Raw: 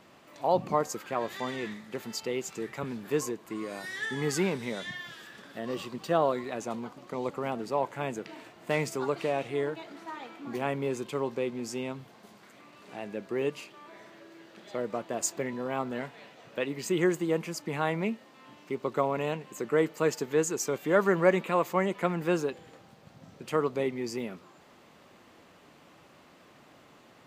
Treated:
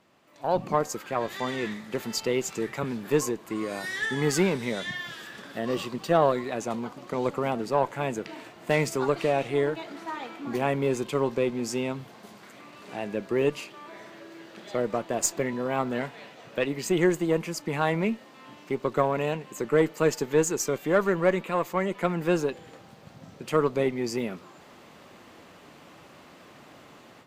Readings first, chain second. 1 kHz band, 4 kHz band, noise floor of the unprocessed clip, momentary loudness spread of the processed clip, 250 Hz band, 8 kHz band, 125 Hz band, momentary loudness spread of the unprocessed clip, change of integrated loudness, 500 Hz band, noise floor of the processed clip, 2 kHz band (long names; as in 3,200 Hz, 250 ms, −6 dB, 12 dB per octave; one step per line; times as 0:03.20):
+3.0 dB, +4.5 dB, −57 dBFS, 14 LU, +4.0 dB, +4.0 dB, +5.0 dB, 15 LU, +3.5 dB, +3.5 dB, −51 dBFS, +3.5 dB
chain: harmonic generator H 4 −26 dB, 8 −36 dB, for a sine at −8.5 dBFS
automatic gain control gain up to 13.5 dB
level −7.5 dB